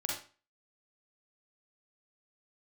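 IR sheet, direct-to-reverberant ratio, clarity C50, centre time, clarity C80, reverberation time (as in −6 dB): −3.0 dB, 1.5 dB, 44 ms, 8.0 dB, 0.35 s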